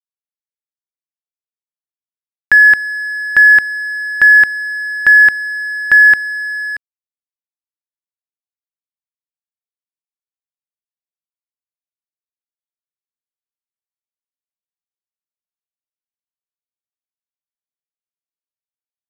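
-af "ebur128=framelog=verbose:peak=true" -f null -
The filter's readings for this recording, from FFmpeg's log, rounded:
Integrated loudness:
  I:          -9.3 LUFS
  Threshold: -19.6 LUFS
Loudness range:
  LRA:         6.1 LU
  Threshold: -31.4 LUFS
  LRA low:   -14.9 LUFS
  LRA high:   -8.8 LUFS
True peak:
  Peak:       -1.7 dBFS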